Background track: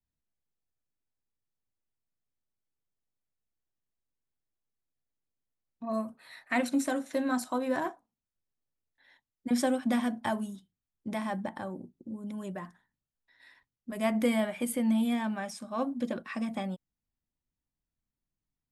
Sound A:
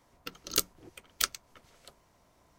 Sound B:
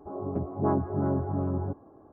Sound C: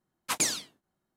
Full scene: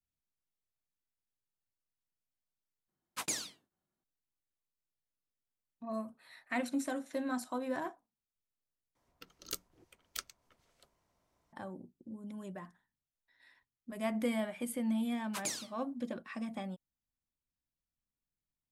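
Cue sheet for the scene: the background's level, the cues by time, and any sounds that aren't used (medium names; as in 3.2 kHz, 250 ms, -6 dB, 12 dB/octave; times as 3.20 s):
background track -6.5 dB
2.88 s: replace with C -9 dB
8.95 s: replace with A -12.5 dB
15.05 s: add C -11 dB
not used: B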